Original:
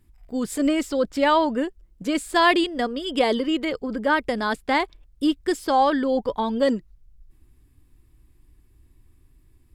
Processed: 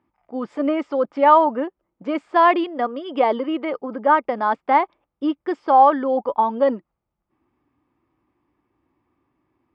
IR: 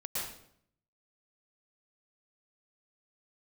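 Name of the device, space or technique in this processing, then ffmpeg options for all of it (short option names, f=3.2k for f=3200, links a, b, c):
phone earpiece: -af "highpass=370,equalizer=f=420:t=q:w=4:g=-5,equalizer=f=600:t=q:w=4:g=3,equalizer=f=860:t=q:w=4:g=9,equalizer=f=1.2k:t=q:w=4:g=10,equalizer=f=2.2k:t=q:w=4:g=4,equalizer=f=4k:t=q:w=4:g=-9,lowpass=f=4.4k:w=0.5412,lowpass=f=4.4k:w=1.3066,tiltshelf=f=880:g=7.5,volume=-1dB"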